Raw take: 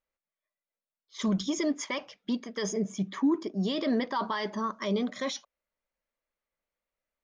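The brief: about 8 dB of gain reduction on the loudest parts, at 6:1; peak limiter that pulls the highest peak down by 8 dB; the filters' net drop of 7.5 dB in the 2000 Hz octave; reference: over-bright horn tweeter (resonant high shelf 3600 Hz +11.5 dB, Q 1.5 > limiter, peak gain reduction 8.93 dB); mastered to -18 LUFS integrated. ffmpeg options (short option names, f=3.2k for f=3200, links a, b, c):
-af "equalizer=f=2k:t=o:g=-6,acompressor=threshold=-30dB:ratio=6,alimiter=level_in=6.5dB:limit=-24dB:level=0:latency=1,volume=-6.5dB,highshelf=f=3.6k:t=q:w=1.5:g=11.5,volume=19dB,alimiter=limit=-7dB:level=0:latency=1"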